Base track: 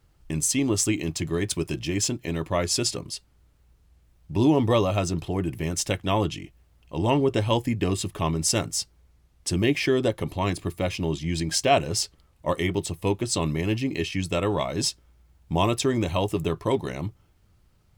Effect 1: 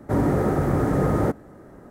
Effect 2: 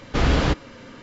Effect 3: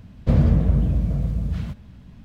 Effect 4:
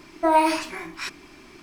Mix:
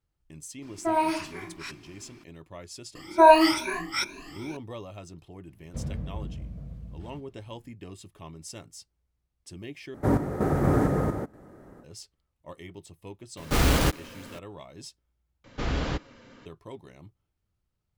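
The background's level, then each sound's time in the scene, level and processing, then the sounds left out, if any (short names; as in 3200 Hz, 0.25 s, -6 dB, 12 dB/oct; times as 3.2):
base track -18.5 dB
0.62 add 4 -7.5 dB + bell 140 Hz +5.5 dB 2.5 oct
2.95 add 4 -1 dB + moving spectral ripple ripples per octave 1.5, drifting +2.3 Hz, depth 21 dB
5.47 add 3 -17.5 dB
9.94 replace with 1 -0.5 dB + random-step tremolo 4.3 Hz, depth 70%
13.37 add 2 -3 dB + block floating point 3-bit
15.44 replace with 2 -9.5 dB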